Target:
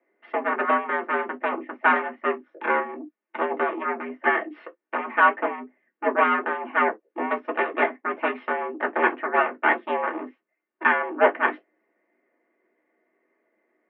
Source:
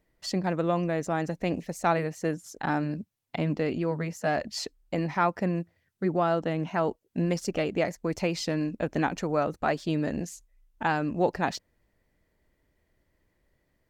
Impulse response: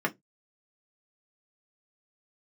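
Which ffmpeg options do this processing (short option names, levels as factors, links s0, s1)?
-filter_complex "[0:a]aeval=exprs='0.251*(cos(1*acos(clip(val(0)/0.251,-1,1)))-cos(1*PI/2))+0.0501*(cos(2*acos(clip(val(0)/0.251,-1,1)))-cos(2*PI/2))+0.0631*(cos(7*acos(clip(val(0)/0.251,-1,1)))-cos(7*PI/2))':c=same,highpass=f=210:t=q:w=0.5412,highpass=f=210:t=q:w=1.307,lowpass=f=2600:t=q:w=0.5176,lowpass=f=2600:t=q:w=0.7071,lowpass=f=2600:t=q:w=1.932,afreqshift=83[s0];[1:a]atrim=start_sample=2205,atrim=end_sample=3528[s1];[s0][s1]afir=irnorm=-1:irlink=0,volume=0.75"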